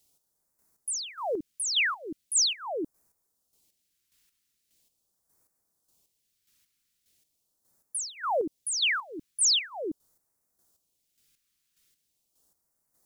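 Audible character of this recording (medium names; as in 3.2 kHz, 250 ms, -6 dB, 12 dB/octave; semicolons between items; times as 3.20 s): a quantiser's noise floor 12-bit, dither triangular; phasing stages 2, 0.41 Hz, lowest notch 670–2900 Hz; chopped level 1.7 Hz, depth 60%, duty 30%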